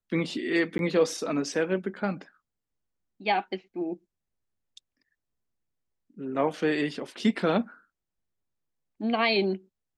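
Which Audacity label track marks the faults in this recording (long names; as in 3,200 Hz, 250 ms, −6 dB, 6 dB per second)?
0.780000	0.790000	drop-out 11 ms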